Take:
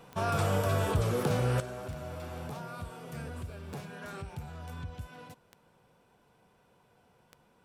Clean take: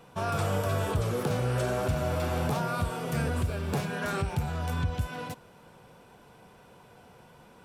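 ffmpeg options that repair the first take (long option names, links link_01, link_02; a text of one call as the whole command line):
ffmpeg -i in.wav -af "adeclick=threshold=4,asetnsamples=nb_out_samples=441:pad=0,asendcmd='1.6 volume volume 11.5dB',volume=0dB" out.wav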